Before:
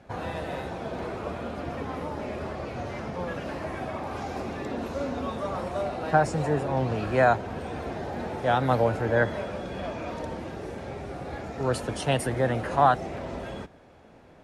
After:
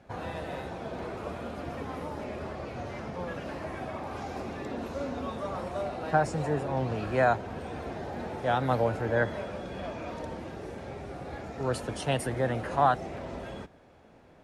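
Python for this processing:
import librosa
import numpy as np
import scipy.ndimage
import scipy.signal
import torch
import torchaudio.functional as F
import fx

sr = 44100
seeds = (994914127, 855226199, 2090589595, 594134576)

y = fx.high_shelf(x, sr, hz=8800.0, db=6.5, at=(1.17, 2.24))
y = y * librosa.db_to_amplitude(-3.5)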